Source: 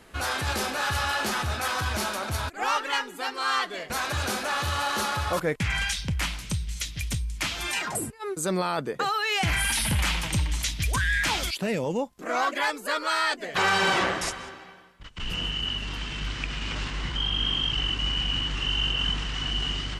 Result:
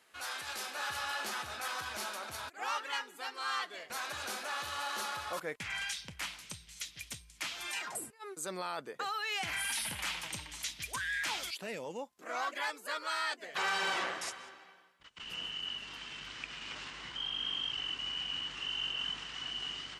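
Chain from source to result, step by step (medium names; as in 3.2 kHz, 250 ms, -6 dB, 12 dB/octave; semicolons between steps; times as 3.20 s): high-pass 1.3 kHz 6 dB/octave, from 0.75 s 620 Hz; trim -9 dB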